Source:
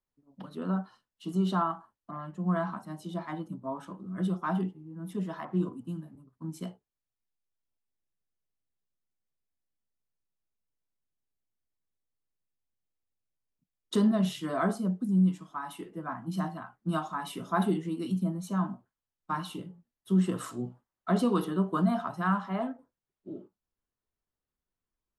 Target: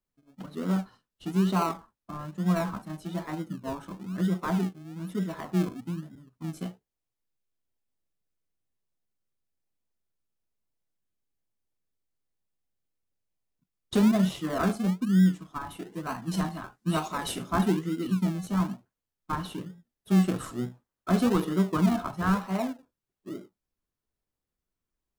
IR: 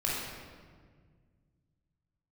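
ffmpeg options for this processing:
-filter_complex "[0:a]asettb=1/sr,asplit=3[s0][s1][s2];[s0]atrim=end=15.924[s3];[s1]atrim=start=15.92:end=17.43,asetpts=PTS-STARTPTS,afade=t=in:d=0.004:c=qsin,afade=t=out:st=1.506:d=0.004:c=qsin,equalizer=f=6900:w=0.4:g=11.5[s4];[s2]atrim=start=17.426[s5];[s3][s4]acrossfade=d=0.004:c1=hsin:c2=qsin[s6];[s6][s5]acrossfade=d=0.004:c1=qsin:c2=hsin,asplit=2[s7][s8];[s8]acrusher=samples=36:mix=1:aa=0.000001:lfo=1:lforange=21.6:lforate=1.1,volume=0.501[s9];[s7][s9]amix=inputs=2:normalize=0"

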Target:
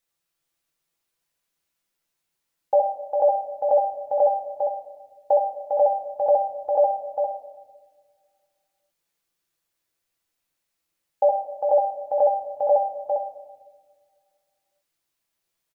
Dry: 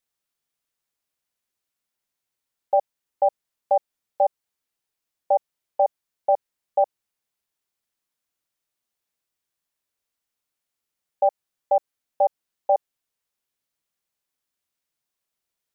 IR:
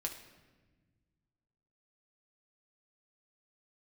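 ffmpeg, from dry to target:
-filter_complex "[0:a]aecho=1:1:402:0.531[s0];[1:a]atrim=start_sample=2205[s1];[s0][s1]afir=irnorm=-1:irlink=0,volume=1.5"

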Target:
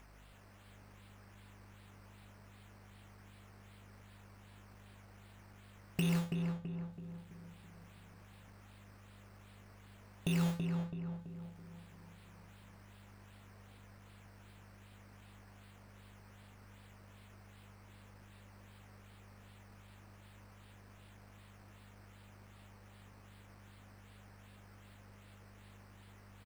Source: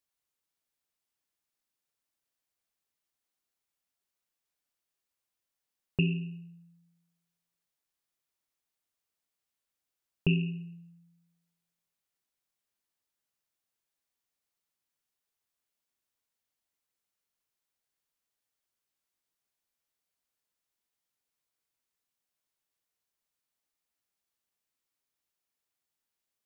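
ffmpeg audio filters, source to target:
-filter_complex "[0:a]aeval=exprs='val(0)+0.5*0.0376*sgn(val(0))':c=same,agate=range=0.00631:threshold=0.0355:ratio=16:detection=peak,acompressor=threshold=0.0316:ratio=2,alimiter=limit=0.075:level=0:latency=1:release=149,acompressor=mode=upward:threshold=0.00224:ratio=2.5,aeval=exprs='val(0)+0.00112*(sin(2*PI*50*n/s)+sin(2*PI*2*50*n/s)/2+sin(2*PI*3*50*n/s)/3+sin(2*PI*4*50*n/s)/4+sin(2*PI*5*50*n/s)/5)':c=same,acrusher=samples=10:mix=1:aa=0.000001:lfo=1:lforange=6:lforate=2.6,asplit=2[s0][s1];[s1]adelay=330,lowpass=f=1600:p=1,volume=0.631,asplit=2[s2][s3];[s3]adelay=330,lowpass=f=1600:p=1,volume=0.52,asplit=2[s4][s5];[s5]adelay=330,lowpass=f=1600:p=1,volume=0.52,asplit=2[s6][s7];[s7]adelay=330,lowpass=f=1600:p=1,volume=0.52,asplit=2[s8][s9];[s9]adelay=330,lowpass=f=1600:p=1,volume=0.52,asplit=2[s10][s11];[s11]adelay=330,lowpass=f=1600:p=1,volume=0.52,asplit=2[s12][s13];[s13]adelay=330,lowpass=f=1600:p=1,volume=0.52[s14];[s2][s4][s6][s8][s10][s12][s14]amix=inputs=7:normalize=0[s15];[s0][s15]amix=inputs=2:normalize=0"

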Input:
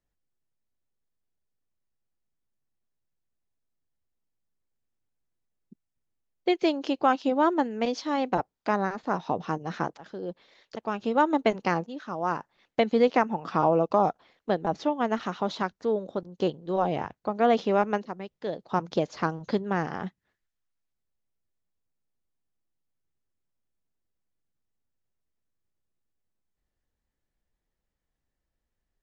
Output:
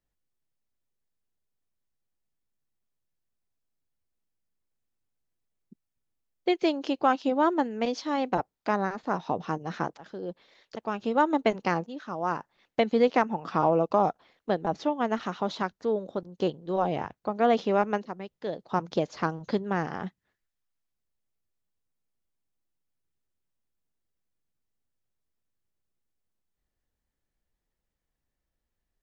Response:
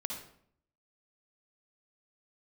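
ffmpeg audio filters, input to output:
-af "aeval=exprs='0.355*(cos(1*acos(clip(val(0)/0.355,-1,1)))-cos(1*PI/2))+0.00794*(cos(2*acos(clip(val(0)/0.355,-1,1)))-cos(2*PI/2))+0.0178*(cos(3*acos(clip(val(0)/0.355,-1,1)))-cos(3*PI/2))+0.002*(cos(4*acos(clip(val(0)/0.355,-1,1)))-cos(4*PI/2))+0.00398*(cos(5*acos(clip(val(0)/0.355,-1,1)))-cos(5*PI/2))':c=same"

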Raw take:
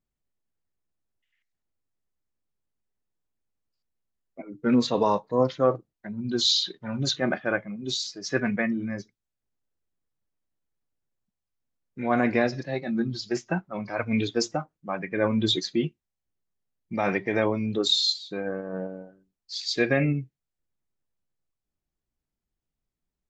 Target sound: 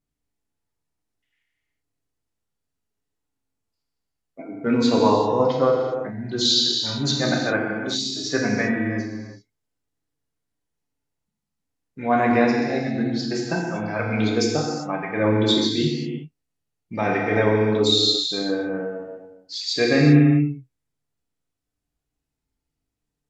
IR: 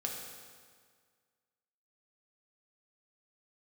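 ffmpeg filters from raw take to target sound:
-filter_complex "[1:a]atrim=start_sample=2205,afade=t=out:st=0.28:d=0.01,atrim=end_sample=12789,asetrate=25578,aresample=44100[s0];[0:a][s0]afir=irnorm=-1:irlink=0"

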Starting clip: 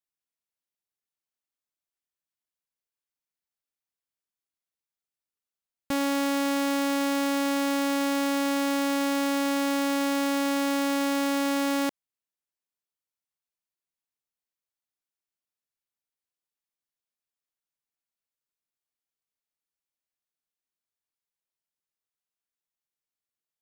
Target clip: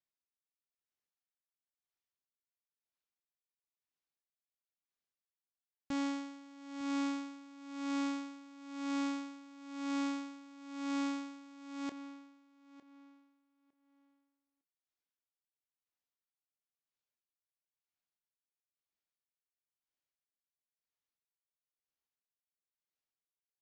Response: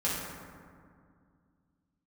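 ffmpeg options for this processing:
-filter_complex "[0:a]lowpass=5800,aresample=16000,asoftclip=type=tanh:threshold=0.0316,aresample=44100,asplit=2[s0][s1];[s1]adelay=26,volume=0.224[s2];[s0][s2]amix=inputs=2:normalize=0,asplit=2[s3][s4];[s4]adelay=906,lowpass=f=3900:p=1,volume=0.237,asplit=2[s5][s6];[s6]adelay=906,lowpass=f=3900:p=1,volume=0.25,asplit=2[s7][s8];[s8]adelay=906,lowpass=f=3900:p=1,volume=0.25[s9];[s5][s7][s9]amix=inputs=3:normalize=0[s10];[s3][s10]amix=inputs=2:normalize=0,aeval=exprs='val(0)*pow(10,-21*(0.5-0.5*cos(2*PI*1*n/s))/20)':c=same,volume=0.794"

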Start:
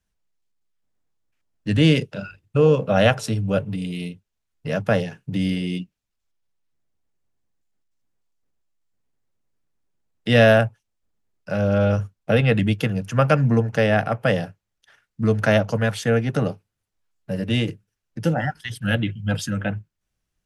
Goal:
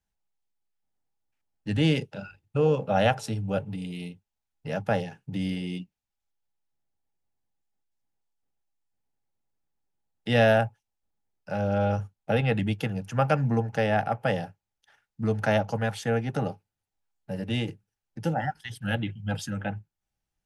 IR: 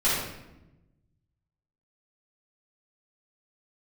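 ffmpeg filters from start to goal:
-af "equalizer=f=820:w=6.8:g=12,bandreject=f=1100:w=24,volume=0.447"

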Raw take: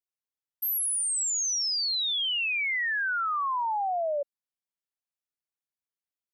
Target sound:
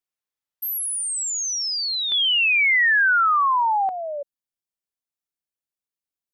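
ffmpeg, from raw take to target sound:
-af "asetnsamples=n=441:p=0,asendcmd='2.12 equalizer g 9.5;3.89 equalizer g -4.5',equalizer=f=1700:w=0.43:g=3,volume=1.19"

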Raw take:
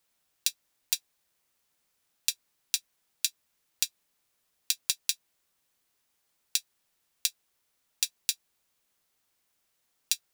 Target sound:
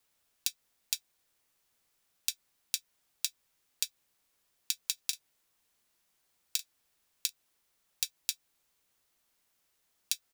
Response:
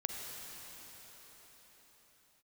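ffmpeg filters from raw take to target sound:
-filter_complex "[0:a]acompressor=threshold=0.0447:ratio=6,afreqshift=-63,asplit=3[s0][s1][s2];[s0]afade=t=out:st=4.97:d=0.02[s3];[s1]asplit=2[s4][s5];[s5]adelay=40,volume=0.224[s6];[s4][s6]amix=inputs=2:normalize=0,afade=t=in:st=4.97:d=0.02,afade=t=out:st=7.28:d=0.02[s7];[s2]afade=t=in:st=7.28:d=0.02[s8];[s3][s7][s8]amix=inputs=3:normalize=0"

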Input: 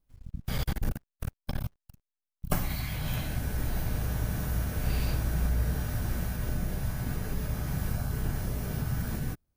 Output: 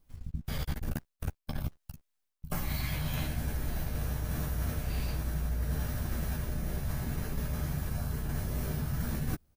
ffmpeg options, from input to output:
-filter_complex "[0:a]areverse,acompressor=threshold=0.0141:ratio=12,areverse,asplit=2[s0][s1];[s1]adelay=13,volume=0.447[s2];[s0][s2]amix=inputs=2:normalize=0,volume=2.37"

